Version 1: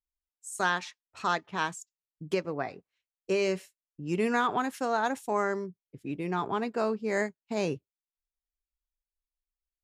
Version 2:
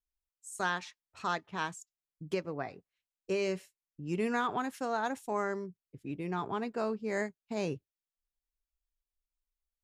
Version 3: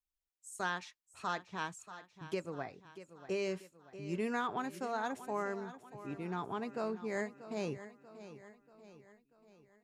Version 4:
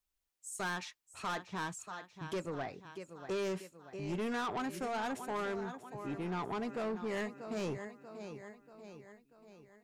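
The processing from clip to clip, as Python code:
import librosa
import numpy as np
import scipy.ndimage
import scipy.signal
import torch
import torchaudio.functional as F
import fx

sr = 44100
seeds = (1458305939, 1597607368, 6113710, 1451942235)

y1 = fx.low_shelf(x, sr, hz=94.0, db=9.0)
y1 = y1 * 10.0 ** (-5.0 / 20.0)
y2 = fx.echo_feedback(y1, sr, ms=637, feedback_pct=50, wet_db=-14.0)
y2 = y2 * 10.0 ** (-4.0 / 20.0)
y3 = 10.0 ** (-38.0 / 20.0) * np.tanh(y2 / 10.0 ** (-38.0 / 20.0))
y3 = y3 * 10.0 ** (5.5 / 20.0)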